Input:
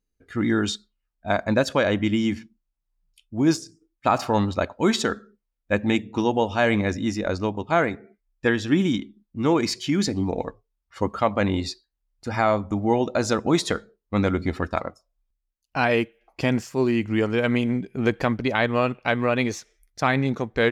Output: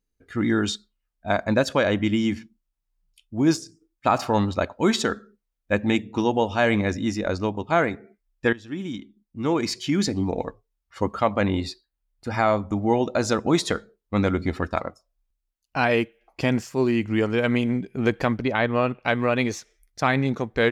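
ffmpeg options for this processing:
-filter_complex "[0:a]asettb=1/sr,asplit=3[s0][s1][s2];[s0]atrim=end=11.414[s3];[s1]atrim=start=11.41:end=12.3,asetpts=PTS-STARTPTS,afade=t=in:d=0.004:c=qsin,afade=t=out:st=0.886:d=0.004:c=qsin,equalizer=f=6200:t=o:w=0.77:g=-6[s4];[s2]atrim=start=12.296[s5];[s3][s4]acrossfade=d=0.004:c1=hsin:c2=qsin[s6];[s6][s5]acrossfade=d=0.004:c1=qsin:c2=hsin,asettb=1/sr,asplit=3[s7][s8][s9];[s7]atrim=end=18.444[s10];[s8]atrim=start=18.44:end=19.04,asetpts=PTS-STARTPTS,afade=t=in:d=0.004:c=qsin,afade=t=out:st=0.596:d=0.004:c=qsin,highshelf=f=4800:g=-10.5[s11];[s9]atrim=start=19.036[s12];[s10][s11]acrossfade=d=0.004:c1=hsin:c2=qsin[s13];[s13][s12]acrossfade=d=0.004:c1=qsin:c2=hsin,asplit=2[s14][s15];[s14]atrim=end=8.53,asetpts=PTS-STARTPTS,afade=t=out:st=8.526:d=0.004:c=hsin:silence=0.125893[s16];[s15]atrim=start=8.53,asetpts=PTS-STARTPTS,afade=t=in:d=1.42:silence=0.125893[s17];[s16][s17]concat=n=2:v=0:a=1"

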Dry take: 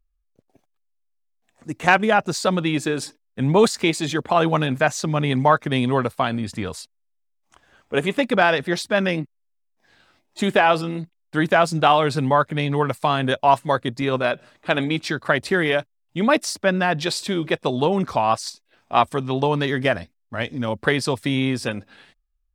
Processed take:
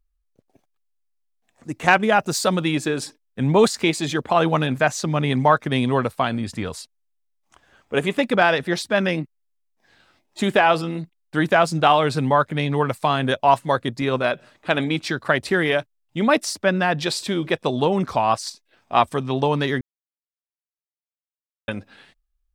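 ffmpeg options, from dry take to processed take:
-filter_complex "[0:a]asettb=1/sr,asplit=3[s0][s1][s2];[s0]atrim=end=2.134[s3];[s1]atrim=start=2.13:end=2.75,asetpts=PTS-STARTPTS,afade=t=in:d=0.004:c=qsin,afade=t=out:st=0.616:d=0.004:c=qsin,highshelf=f=9100:g=12[s4];[s2]atrim=start=2.746[s5];[s3][s4]acrossfade=d=0.004:c1=hsin:c2=qsin[s6];[s6][s5]acrossfade=d=0.004:c1=qsin:c2=hsin,asplit=3[s7][s8][s9];[s7]atrim=end=19.81,asetpts=PTS-STARTPTS,afade=t=out:st=19.806:d=0.004:c=hsin[s10];[s8]atrim=start=19.81:end=21.68,asetpts=PTS-STARTPTS,volume=0[s11];[s9]atrim=start=21.68,asetpts=PTS-STARTPTS,afade=t=in:d=0.004:c=hsin[s12];[s10][s11][s12]concat=n=3:v=0:a=1"

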